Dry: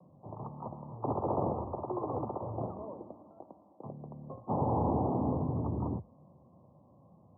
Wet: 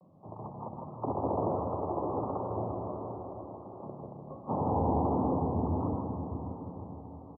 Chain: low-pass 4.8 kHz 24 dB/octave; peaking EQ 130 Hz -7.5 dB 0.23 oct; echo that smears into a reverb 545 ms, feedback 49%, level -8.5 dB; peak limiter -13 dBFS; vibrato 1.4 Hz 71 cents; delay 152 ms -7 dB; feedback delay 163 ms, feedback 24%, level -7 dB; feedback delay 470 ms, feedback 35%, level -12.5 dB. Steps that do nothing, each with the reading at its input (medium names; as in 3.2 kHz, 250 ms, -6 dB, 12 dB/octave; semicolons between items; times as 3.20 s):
low-pass 4.8 kHz: input has nothing above 1.2 kHz; peak limiter -13 dBFS: peak at its input -19.0 dBFS